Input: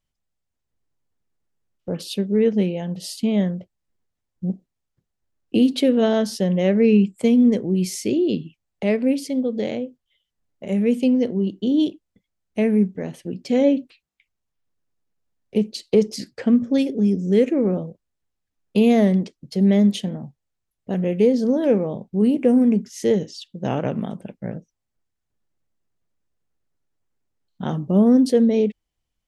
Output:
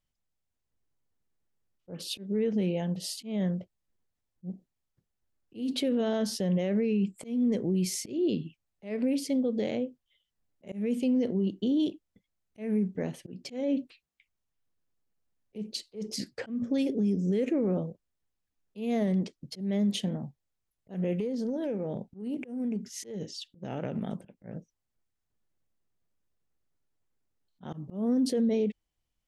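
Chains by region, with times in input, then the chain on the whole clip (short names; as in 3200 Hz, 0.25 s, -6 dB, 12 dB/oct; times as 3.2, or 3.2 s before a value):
21.15–24.12 notch 1100 Hz, Q 5.8 + compressor 16:1, threshold -24 dBFS
whole clip: limiter -17 dBFS; auto swell 0.191 s; gain -3.5 dB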